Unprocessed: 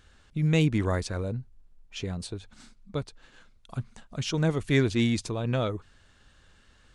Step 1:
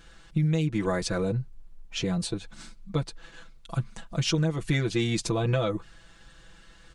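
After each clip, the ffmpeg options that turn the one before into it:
-af "aecho=1:1:6:0.98,acompressor=threshold=0.0562:ratio=12,volume=1.5"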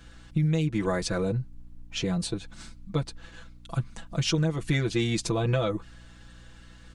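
-af "aeval=exprs='val(0)+0.00316*(sin(2*PI*60*n/s)+sin(2*PI*2*60*n/s)/2+sin(2*PI*3*60*n/s)/3+sin(2*PI*4*60*n/s)/4+sin(2*PI*5*60*n/s)/5)':c=same"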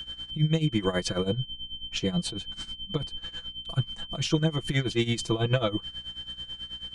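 -af "aeval=exprs='val(0)+0.0158*sin(2*PI*3100*n/s)':c=same,tremolo=f=9.2:d=0.81,volume=1.41"

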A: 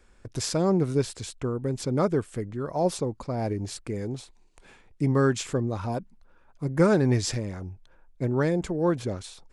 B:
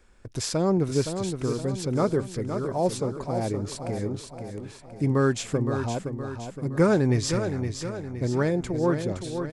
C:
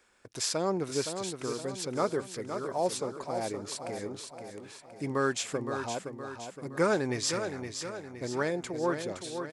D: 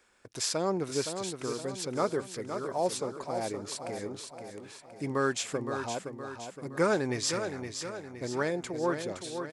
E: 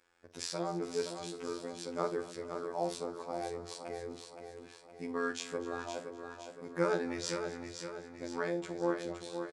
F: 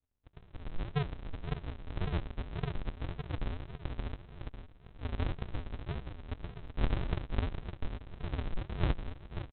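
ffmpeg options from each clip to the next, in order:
-af "aecho=1:1:517|1034|1551|2068|2585|3102:0.422|0.207|0.101|0.0496|0.0243|0.0119"
-af "highpass=f=700:p=1"
-af anull
-filter_complex "[0:a]highshelf=f=8300:g=-11.5,afftfilt=real='hypot(re,im)*cos(PI*b)':imag='0':win_size=2048:overlap=0.75,asplit=2[s0][s1];[s1]aecho=0:1:44|67|250|420:0.251|0.119|0.119|0.106[s2];[s0][s2]amix=inputs=2:normalize=0,volume=0.794"
-af "dynaudnorm=f=190:g=7:m=2.82,aresample=8000,acrusher=samples=39:mix=1:aa=0.000001:lfo=1:lforange=23.4:lforate=1.8,aresample=44100,volume=0.562"

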